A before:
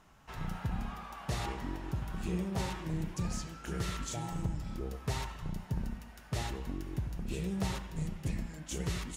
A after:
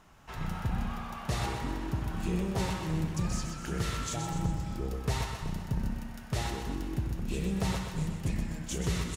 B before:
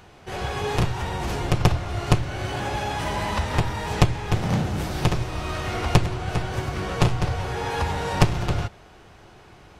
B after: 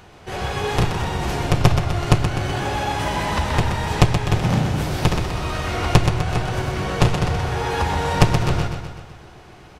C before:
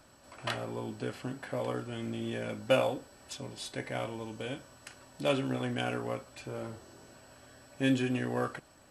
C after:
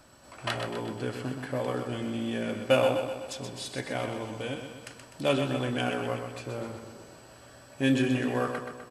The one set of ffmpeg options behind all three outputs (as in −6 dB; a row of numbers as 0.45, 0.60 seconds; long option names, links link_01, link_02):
-af "aecho=1:1:126|252|378|504|630|756|882:0.447|0.246|0.135|0.0743|0.0409|0.0225|0.0124,volume=3dB"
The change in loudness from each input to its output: +4.0, +4.0, +4.0 LU